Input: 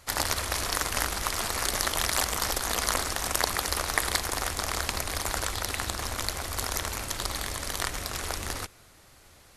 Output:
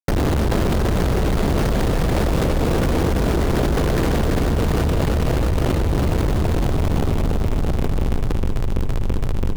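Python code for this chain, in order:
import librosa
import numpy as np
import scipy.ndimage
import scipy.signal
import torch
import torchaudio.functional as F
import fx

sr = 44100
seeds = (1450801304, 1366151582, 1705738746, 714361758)

y = fx.filter_sweep_lowpass(x, sr, from_hz=1800.0, to_hz=330.0, start_s=6.02, end_s=8.12, q=1.4)
y = fx.schmitt(y, sr, flips_db=-31.0)
y = np.repeat(y[::4], 4)[:len(y)]
y = fx.low_shelf_res(y, sr, hz=670.0, db=9.5, q=1.5)
y = fx.hum_notches(y, sr, base_hz=50, count=2)
y = fx.fuzz(y, sr, gain_db=28.0, gate_db=-38.0)
y = fx.echo_feedback(y, sr, ms=333, feedback_pct=52, wet_db=-4)
y = fx.env_flatten(y, sr, amount_pct=100)
y = F.gain(torch.from_numpy(y), -7.5).numpy()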